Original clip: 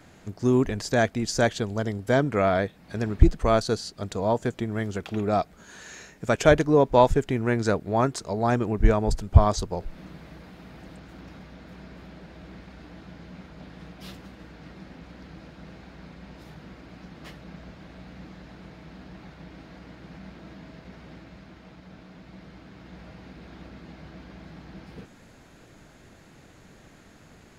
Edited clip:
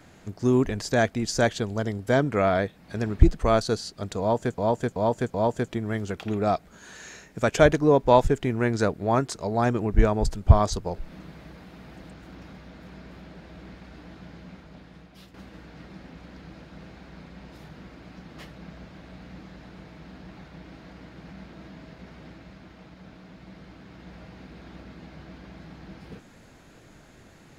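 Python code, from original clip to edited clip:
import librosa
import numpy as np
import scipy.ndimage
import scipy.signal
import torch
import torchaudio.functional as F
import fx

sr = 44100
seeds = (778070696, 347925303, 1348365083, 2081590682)

y = fx.edit(x, sr, fx.repeat(start_s=4.2, length_s=0.38, count=4),
    fx.fade_out_to(start_s=13.19, length_s=1.01, floor_db=-10.0), tone=tone)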